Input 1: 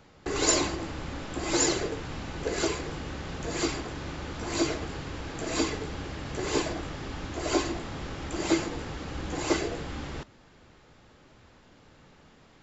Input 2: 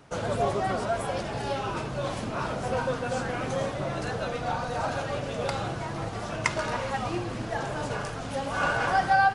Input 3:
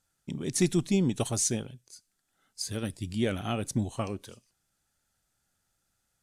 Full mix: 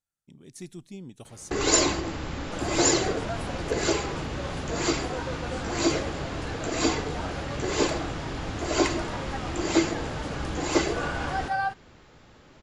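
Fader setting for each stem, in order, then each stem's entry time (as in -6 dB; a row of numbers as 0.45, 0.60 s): +3.0, -6.5, -16.0 dB; 1.25, 2.40, 0.00 s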